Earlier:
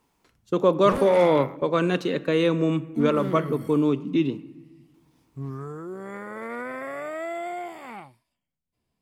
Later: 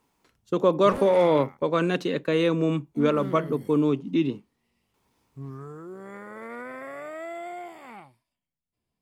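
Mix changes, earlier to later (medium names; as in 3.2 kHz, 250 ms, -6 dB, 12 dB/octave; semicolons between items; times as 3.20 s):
background -4.5 dB; reverb: off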